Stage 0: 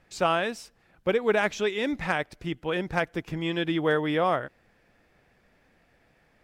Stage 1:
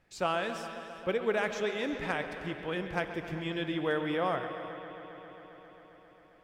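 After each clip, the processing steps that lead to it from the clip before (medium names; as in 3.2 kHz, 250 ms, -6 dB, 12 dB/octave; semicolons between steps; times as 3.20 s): on a send: bucket-brigade echo 134 ms, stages 4096, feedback 84%, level -13 dB; on the sum: gated-style reverb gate 430 ms flat, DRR 10.5 dB; trim -6.5 dB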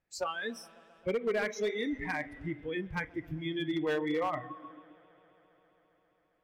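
spectral noise reduction 20 dB; in parallel at -2 dB: compression 4:1, threshold -45 dBFS, peak gain reduction 17 dB; on the sum: overload inside the chain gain 25.5 dB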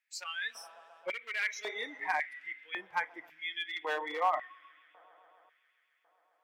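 LFO high-pass square 0.91 Hz 820–2100 Hz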